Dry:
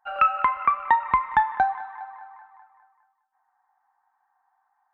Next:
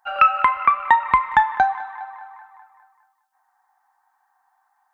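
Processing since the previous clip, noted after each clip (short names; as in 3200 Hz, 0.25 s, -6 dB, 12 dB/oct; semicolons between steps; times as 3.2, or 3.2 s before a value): high shelf 2600 Hz +10 dB; gain +3 dB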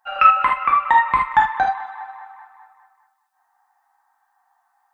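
non-linear reverb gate 0.1 s flat, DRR -2.5 dB; gain -3 dB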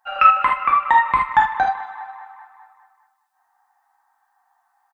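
feedback echo 0.155 s, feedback 40%, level -22 dB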